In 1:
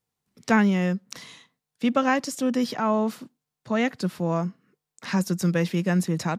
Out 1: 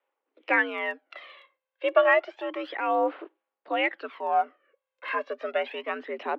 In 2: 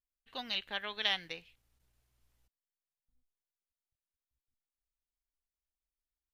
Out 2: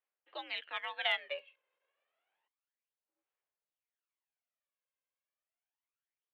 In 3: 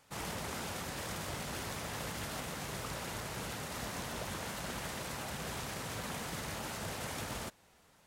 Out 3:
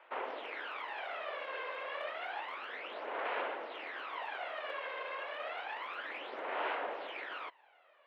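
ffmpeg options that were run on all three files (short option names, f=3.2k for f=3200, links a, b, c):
-af "highpass=f=350:t=q:w=0.5412,highpass=f=350:t=q:w=1.307,lowpass=f=3k:t=q:w=0.5176,lowpass=f=3k:t=q:w=0.7071,lowpass=f=3k:t=q:w=1.932,afreqshift=73,aphaser=in_gain=1:out_gain=1:delay=1.9:decay=0.65:speed=0.3:type=sinusoidal"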